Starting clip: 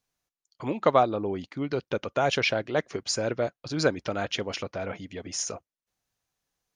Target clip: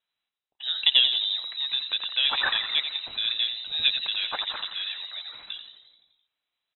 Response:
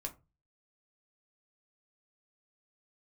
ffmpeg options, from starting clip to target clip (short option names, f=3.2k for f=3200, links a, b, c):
-filter_complex "[0:a]asplit=2[a][b];[b]asplit=8[c][d][e][f][g][h][i][j];[c]adelay=86,afreqshift=-120,volume=-8dB[k];[d]adelay=172,afreqshift=-240,volume=-12.3dB[l];[e]adelay=258,afreqshift=-360,volume=-16.6dB[m];[f]adelay=344,afreqshift=-480,volume=-20.9dB[n];[g]adelay=430,afreqshift=-600,volume=-25.2dB[o];[h]adelay=516,afreqshift=-720,volume=-29.5dB[p];[i]adelay=602,afreqshift=-840,volume=-33.8dB[q];[j]adelay=688,afreqshift=-960,volume=-38.1dB[r];[k][l][m][n][o][p][q][r]amix=inputs=8:normalize=0[s];[a][s]amix=inputs=2:normalize=0,lowpass=f=3.4k:t=q:w=0.5098,lowpass=f=3.4k:t=q:w=0.6013,lowpass=f=3.4k:t=q:w=0.9,lowpass=f=3.4k:t=q:w=2.563,afreqshift=-4000"